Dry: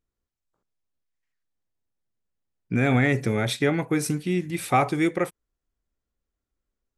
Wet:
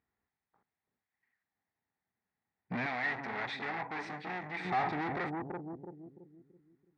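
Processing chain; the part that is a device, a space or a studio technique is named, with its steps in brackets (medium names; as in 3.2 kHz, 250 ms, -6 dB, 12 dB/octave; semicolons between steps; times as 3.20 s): analogue delay pedal into a guitar amplifier (bucket-brigade echo 332 ms, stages 1024, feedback 39%, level -9.5 dB; valve stage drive 37 dB, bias 0.45; cabinet simulation 110–3600 Hz, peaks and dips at 130 Hz -5 dB, 330 Hz -5 dB, 550 Hz -7 dB, 810 Hz +9 dB, 1.9 kHz +9 dB, 3 kHz -10 dB); 2.86–4.65 s: bass shelf 400 Hz -12 dB; trim +4.5 dB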